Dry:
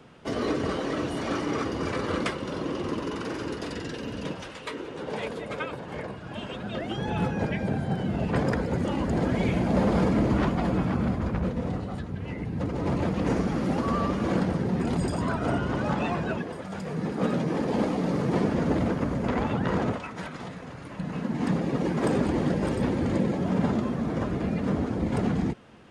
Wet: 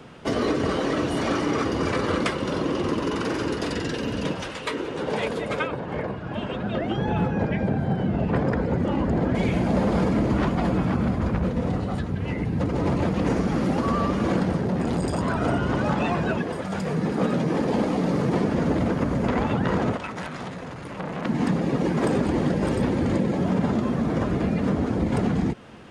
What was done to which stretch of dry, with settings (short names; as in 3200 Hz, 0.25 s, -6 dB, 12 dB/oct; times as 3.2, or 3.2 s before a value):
5.67–9.35 LPF 1900 Hz 6 dB/oct
14.59–15.36 core saturation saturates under 420 Hz
19.97–21.26 core saturation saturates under 1800 Hz
whole clip: compressor 2.5:1, threshold -28 dBFS; gain +7 dB